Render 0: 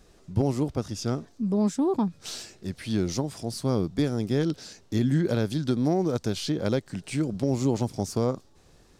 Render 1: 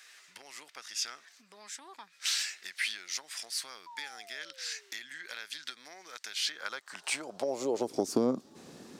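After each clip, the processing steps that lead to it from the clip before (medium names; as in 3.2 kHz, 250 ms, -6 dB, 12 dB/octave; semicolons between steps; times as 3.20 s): compression 6:1, threshold -34 dBFS, peak gain reduction 14 dB; painted sound fall, 3.86–4.92 s, 380–1000 Hz -45 dBFS; high-pass sweep 1.9 kHz -> 220 Hz, 6.43–8.40 s; trim +7 dB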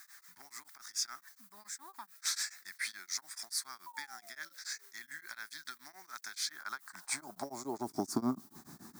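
static phaser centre 1.2 kHz, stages 4; added noise violet -60 dBFS; tremolo of two beating tones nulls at 7 Hz; trim +3 dB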